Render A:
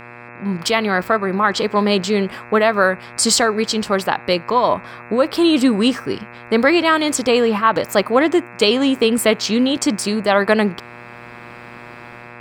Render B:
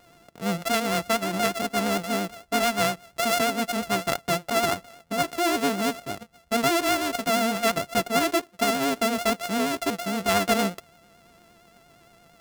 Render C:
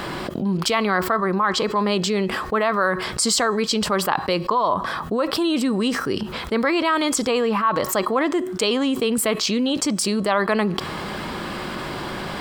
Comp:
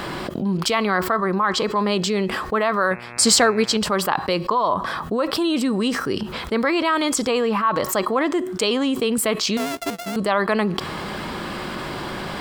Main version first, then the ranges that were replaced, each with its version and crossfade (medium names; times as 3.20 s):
C
2.91–3.77 s: from A
9.57–10.16 s: from B